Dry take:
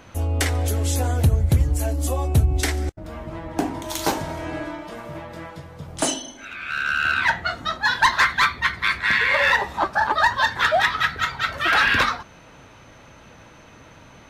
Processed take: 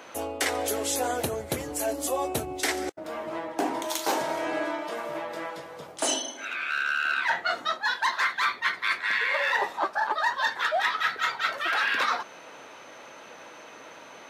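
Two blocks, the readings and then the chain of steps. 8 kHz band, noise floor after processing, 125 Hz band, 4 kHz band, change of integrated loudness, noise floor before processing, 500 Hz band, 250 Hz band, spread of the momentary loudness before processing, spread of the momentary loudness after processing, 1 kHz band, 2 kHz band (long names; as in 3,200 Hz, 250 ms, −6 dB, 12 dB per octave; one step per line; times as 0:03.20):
−1.5 dB, −47 dBFS, −23.5 dB, −5.0 dB, −6.5 dB, −48 dBFS, −1.5 dB, −6.0 dB, 17 LU, 20 LU, −5.0 dB, −6.0 dB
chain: Chebyshev high-pass filter 440 Hz, order 2
reversed playback
downward compressor 6 to 1, threshold −27 dBFS, peak gain reduction 13.5 dB
reversed playback
level +3.5 dB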